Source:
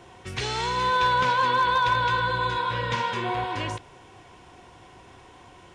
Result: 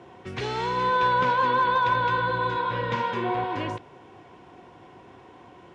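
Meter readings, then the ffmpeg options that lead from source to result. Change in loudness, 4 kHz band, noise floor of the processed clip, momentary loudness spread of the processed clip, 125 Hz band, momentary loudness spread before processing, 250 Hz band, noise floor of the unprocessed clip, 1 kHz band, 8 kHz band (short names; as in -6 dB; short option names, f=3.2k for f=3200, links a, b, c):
-0.5 dB, -6.0 dB, -50 dBFS, 11 LU, -1.0 dB, 10 LU, +3.0 dB, -51 dBFS, 0.0 dB, under -10 dB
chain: -af "highpass=250,aemphasis=mode=reproduction:type=riaa"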